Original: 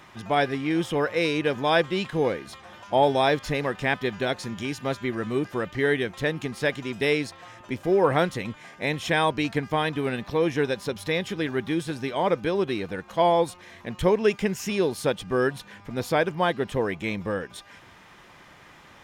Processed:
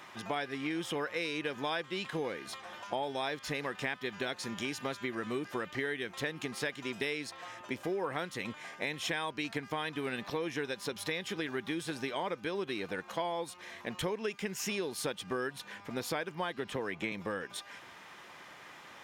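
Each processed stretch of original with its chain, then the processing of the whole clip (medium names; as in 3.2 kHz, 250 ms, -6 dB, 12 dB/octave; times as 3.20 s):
16.57–17.12 s: treble shelf 6 kHz -5.5 dB + three bands compressed up and down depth 70%
whole clip: high-pass 380 Hz 6 dB/octave; dynamic bell 620 Hz, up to -5 dB, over -36 dBFS, Q 1.1; compression, threshold -32 dBFS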